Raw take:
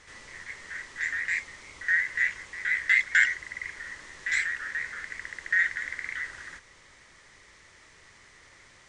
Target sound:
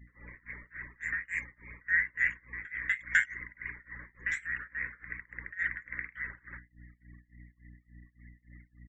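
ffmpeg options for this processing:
ffmpeg -i in.wav -filter_complex "[0:a]equalizer=frequency=4300:width=2.4:gain=-14.5,asplit=2[link_01][link_02];[link_02]adelay=422,lowpass=frequency=1900:poles=1,volume=-20dB,asplit=2[link_03][link_04];[link_04]adelay=422,lowpass=frequency=1900:poles=1,volume=0.47,asplit=2[link_05][link_06];[link_06]adelay=422,lowpass=frequency=1900:poles=1,volume=0.47,asplit=2[link_07][link_08];[link_08]adelay=422,lowpass=frequency=1900:poles=1,volume=0.47[link_09];[link_03][link_05][link_07][link_09]amix=inputs=4:normalize=0[link_10];[link_01][link_10]amix=inputs=2:normalize=0,aeval=exprs='val(0)+0.00355*(sin(2*PI*60*n/s)+sin(2*PI*2*60*n/s)/2+sin(2*PI*3*60*n/s)/3+sin(2*PI*4*60*n/s)/4+sin(2*PI*5*60*n/s)/5)':channel_layout=same,afftfilt=real='re*gte(hypot(re,im),0.00562)':imag='im*gte(hypot(re,im),0.00562)':win_size=1024:overlap=0.75,tremolo=f=3.5:d=0.95" out.wav

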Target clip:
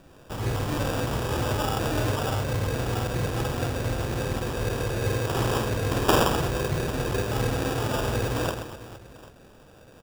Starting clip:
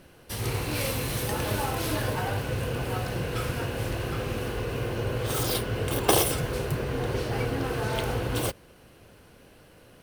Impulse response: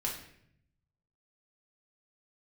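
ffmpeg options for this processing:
-af "aecho=1:1:50|130|258|462.8|790.5:0.631|0.398|0.251|0.158|0.1,acrusher=samples=21:mix=1:aa=0.000001"

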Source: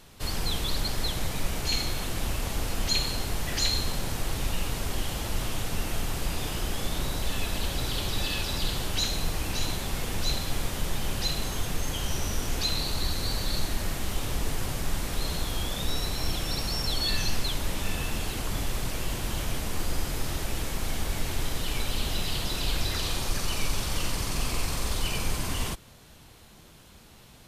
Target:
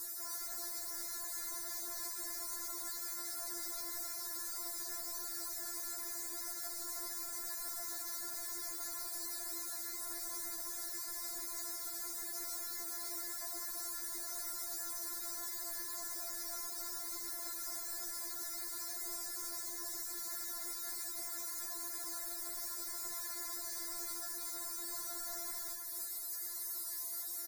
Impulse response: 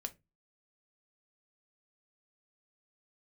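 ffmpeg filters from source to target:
-af "highpass=frequency=370:width=0.5412,highpass=frequency=370:width=1.3066,aemphasis=mode=production:type=riaa,acompressor=threshold=-39dB:ratio=4,aexciter=amount=2.2:drive=1.8:freq=3500,aeval=exprs='0.0158*(abs(mod(val(0)/0.0158+3,4)-2)-1)':channel_layout=same,asuperstop=centerf=2900:order=4:qfactor=1.2,aecho=1:1:317:0.596,afftfilt=real='re*4*eq(mod(b,16),0)':imag='im*4*eq(mod(b,16),0)':win_size=2048:overlap=0.75"

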